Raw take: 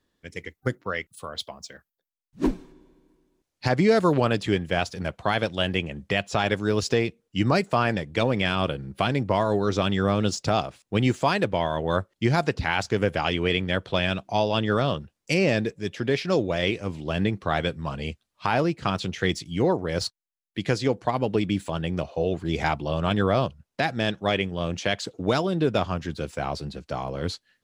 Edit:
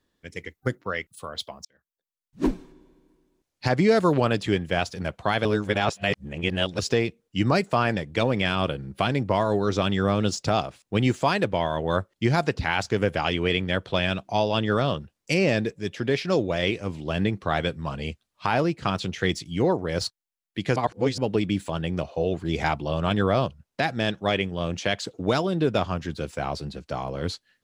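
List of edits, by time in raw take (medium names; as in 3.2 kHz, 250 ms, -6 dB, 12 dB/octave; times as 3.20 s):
1.65–2.43 s: fade in
5.45–6.79 s: reverse
20.76–21.18 s: reverse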